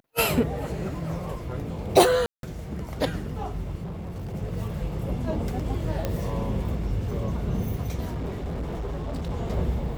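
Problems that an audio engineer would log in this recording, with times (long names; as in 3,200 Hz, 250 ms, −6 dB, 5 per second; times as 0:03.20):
0:02.26–0:02.43: drop-out 172 ms
0:03.83–0:04.35: clipping −31 dBFS
0:06.05: click −13 dBFS
0:08.09–0:09.31: clipping −27 dBFS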